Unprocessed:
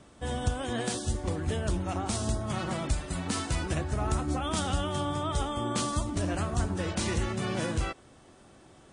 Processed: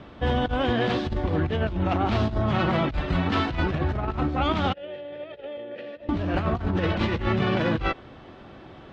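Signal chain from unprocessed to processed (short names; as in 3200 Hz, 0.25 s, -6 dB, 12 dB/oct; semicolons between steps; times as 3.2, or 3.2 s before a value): tracing distortion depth 0.28 ms; one-sided clip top -24 dBFS; LPF 3700 Hz 24 dB/oct; negative-ratio compressor -32 dBFS, ratio -0.5; 4.73–6.09 vowel filter e; gain +8.5 dB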